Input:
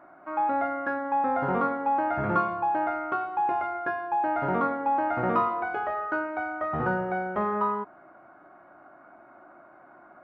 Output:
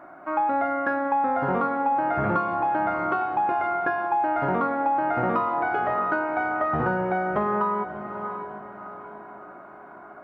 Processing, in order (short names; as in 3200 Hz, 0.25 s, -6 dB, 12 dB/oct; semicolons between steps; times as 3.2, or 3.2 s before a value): on a send: diffused feedback echo 0.663 s, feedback 44%, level -13 dB; on the sum: compressor, threshold -27 dBFS, peak gain reduction 8 dB; gain +6.5 dB